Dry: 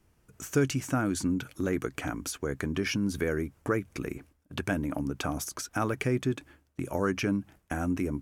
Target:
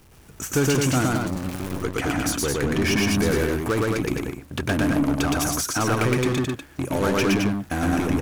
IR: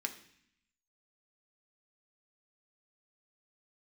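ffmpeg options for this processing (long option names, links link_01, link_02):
-filter_complex "[0:a]aeval=exprs='val(0)+0.5*0.0398*sgn(val(0))':channel_layout=same,asettb=1/sr,asplit=3[link_01][link_02][link_03];[link_01]atrim=end=1.054[link_04];[link_02]atrim=start=1.05:end=1.83,asetpts=PTS-STARTPTS,afade=type=in:duration=0.004:curve=qsin,afade=type=out:start_time=0.776:duration=0.004:curve=qsin,acrossover=split=150[link_05][link_06];[link_06]acompressor=threshold=-35dB:ratio=10[link_07];[link_05][link_07]amix=inputs=2:normalize=0[link_08];[link_03]atrim=start=1.826[link_09];[link_04][link_08]acrossfade=duration=0.004:curve1=hsin:curve2=qsin[link_10];[link_10][link_09]acrossfade=duration=0.004:curve1=qsin:curve2=hsin,acrusher=bits=4:mix=0:aa=0.5,asettb=1/sr,asplit=3[link_11][link_12][link_13];[link_11]atrim=end=3.204[link_14];[link_12]atrim=start=3.2:end=3.72,asetpts=PTS-STARTPTS,afade=type=in:duration=0.004:curve=qsin,afade=type=out:start_time=0.516:duration=0.004:curve=qsin,highshelf=frequency=9200:gain=7.5[link_15];[link_13]atrim=start=3.716[link_16];[link_14][link_15]acrossfade=duration=0.004:curve1=hsin:curve2=qsin[link_17];[link_17][link_16]acrossfade=duration=0.004:curve1=qsin:curve2=hsin,aecho=1:1:116.6|215.7:0.891|0.631,volume=1.5dB"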